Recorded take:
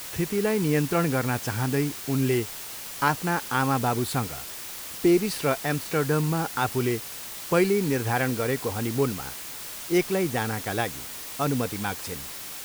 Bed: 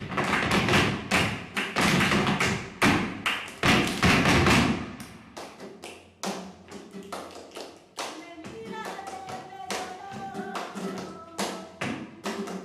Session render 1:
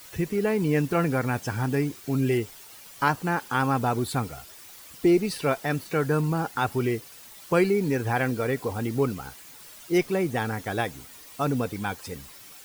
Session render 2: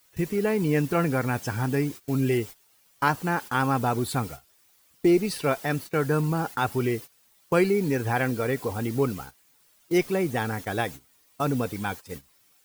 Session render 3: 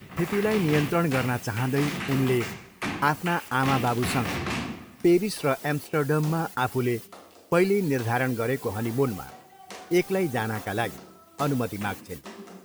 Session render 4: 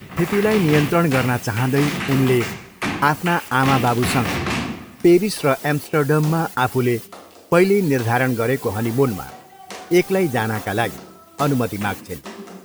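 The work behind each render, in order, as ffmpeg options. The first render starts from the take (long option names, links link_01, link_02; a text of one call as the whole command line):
ffmpeg -i in.wav -af "afftdn=noise_reduction=11:noise_floor=-38" out.wav
ffmpeg -i in.wav -af "highshelf=frequency=10000:gain=3,agate=range=-17dB:threshold=-36dB:ratio=16:detection=peak" out.wav
ffmpeg -i in.wav -i bed.wav -filter_complex "[1:a]volume=-9.5dB[link_01];[0:a][link_01]amix=inputs=2:normalize=0" out.wav
ffmpeg -i in.wav -af "volume=7dB,alimiter=limit=-3dB:level=0:latency=1" out.wav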